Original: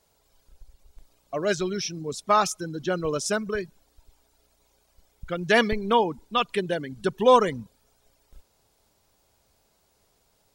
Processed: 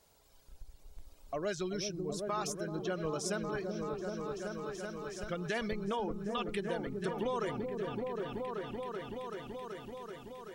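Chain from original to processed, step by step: limiter -15.5 dBFS, peak gain reduction 10.5 dB; repeats that get brighter 0.381 s, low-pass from 400 Hz, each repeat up 1 oct, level -3 dB; compressor 2:1, threshold -41 dBFS, peak gain reduction 11.5 dB

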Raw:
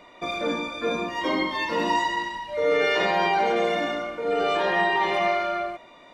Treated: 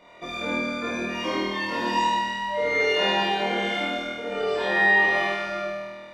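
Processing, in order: flutter echo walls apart 4.3 m, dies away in 1.5 s; gain -5.5 dB

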